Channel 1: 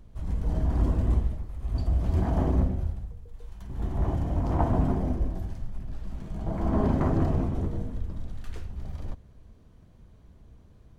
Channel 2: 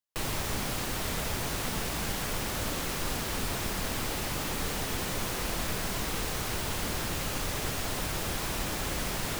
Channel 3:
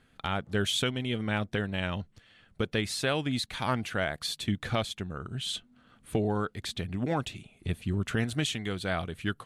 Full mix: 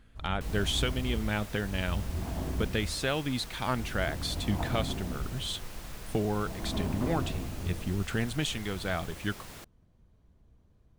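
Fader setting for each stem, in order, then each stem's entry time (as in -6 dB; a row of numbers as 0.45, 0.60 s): -9.5, -13.5, -1.5 dB; 0.00, 0.25, 0.00 s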